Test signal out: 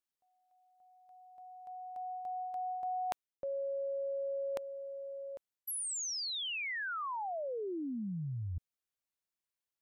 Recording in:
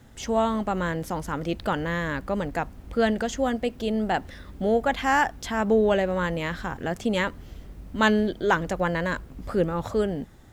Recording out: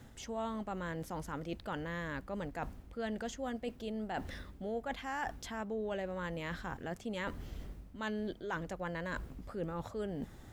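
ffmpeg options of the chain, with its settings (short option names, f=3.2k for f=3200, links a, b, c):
-af "areverse,acompressor=threshold=-37dB:ratio=4,areverse,volume=-1.5dB"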